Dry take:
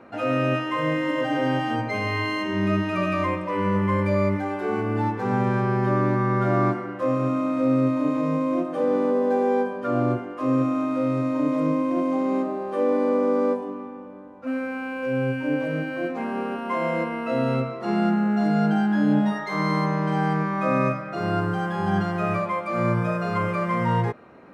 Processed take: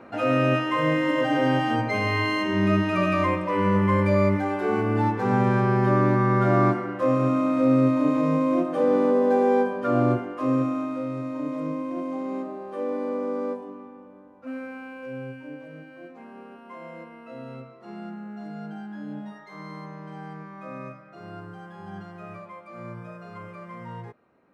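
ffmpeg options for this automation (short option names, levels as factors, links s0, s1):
-af "volume=1.19,afade=t=out:st=10.14:d=0.93:silence=0.375837,afade=t=out:st=14.63:d=0.96:silence=0.354813"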